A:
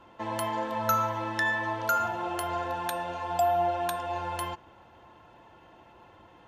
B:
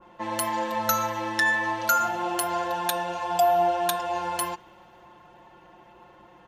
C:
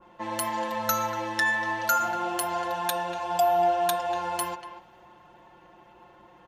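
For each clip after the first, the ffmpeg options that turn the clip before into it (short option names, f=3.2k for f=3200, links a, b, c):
-af "aecho=1:1:5.6:0.71,adynamicequalizer=threshold=0.00891:dfrequency=2200:dqfactor=0.7:tfrequency=2200:tqfactor=0.7:attack=5:release=100:ratio=0.375:range=4:mode=boostabove:tftype=highshelf"
-filter_complex "[0:a]asplit=2[a][b];[b]adelay=240,highpass=300,lowpass=3.4k,asoftclip=type=hard:threshold=-15.5dB,volume=-10dB[c];[a][c]amix=inputs=2:normalize=0,volume=-2dB"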